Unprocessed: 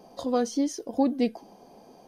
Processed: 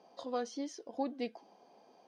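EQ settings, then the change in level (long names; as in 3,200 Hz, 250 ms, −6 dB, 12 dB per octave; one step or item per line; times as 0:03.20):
high-pass filter 660 Hz 6 dB per octave
low-pass filter 4,700 Hz 12 dB per octave
−6.0 dB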